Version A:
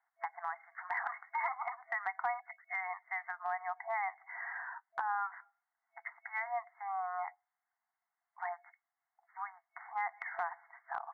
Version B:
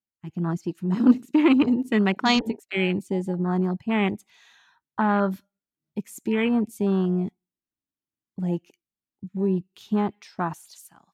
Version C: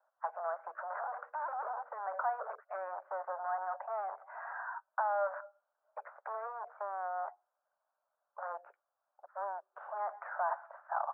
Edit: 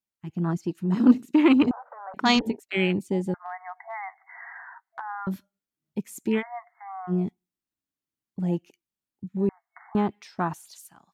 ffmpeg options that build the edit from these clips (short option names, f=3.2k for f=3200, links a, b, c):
-filter_complex "[0:a]asplit=3[a][b][c];[1:a]asplit=5[d][e][f][g][h];[d]atrim=end=1.712[i];[2:a]atrim=start=1.708:end=2.142[j];[e]atrim=start=2.138:end=3.342[k];[a]atrim=start=3.338:end=5.272[l];[f]atrim=start=5.268:end=6.43[m];[b]atrim=start=6.37:end=7.13[n];[g]atrim=start=7.07:end=9.492[o];[c]atrim=start=9.488:end=9.952[p];[h]atrim=start=9.948[q];[i][j]acrossfade=d=0.004:c1=hsin:c2=hsin[r];[r][k]acrossfade=d=0.004:c1=hsin:c2=hsin[s];[s][l]acrossfade=d=0.004:c1=hsin:c2=hsin[t];[t][m]acrossfade=d=0.004:c1=hsin:c2=hsin[u];[u][n]acrossfade=d=0.06:c1=tri:c2=tri[v];[v][o]acrossfade=d=0.06:c1=tri:c2=tri[w];[w][p]acrossfade=d=0.004:c1=hsin:c2=hsin[x];[x][q]acrossfade=d=0.004:c1=hsin:c2=hsin"